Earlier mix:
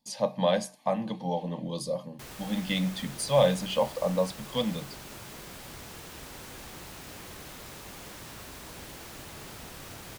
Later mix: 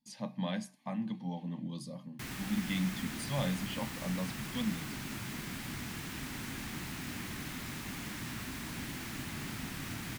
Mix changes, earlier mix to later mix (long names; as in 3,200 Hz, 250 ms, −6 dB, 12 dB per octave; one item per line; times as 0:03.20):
speech −11.5 dB
master: add octave-band graphic EQ 125/250/500/2,000 Hz +5/+11/−10/+6 dB